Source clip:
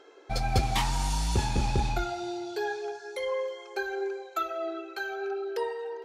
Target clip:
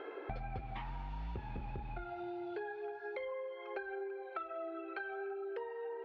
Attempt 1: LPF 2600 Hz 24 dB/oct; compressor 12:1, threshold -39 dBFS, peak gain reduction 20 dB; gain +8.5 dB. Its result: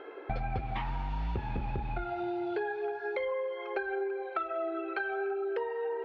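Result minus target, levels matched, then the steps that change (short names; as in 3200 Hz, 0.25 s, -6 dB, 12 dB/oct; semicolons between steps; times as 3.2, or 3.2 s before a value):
compressor: peak gain reduction -8.5 dB
change: compressor 12:1, threshold -48.5 dBFS, peak gain reduction 28.5 dB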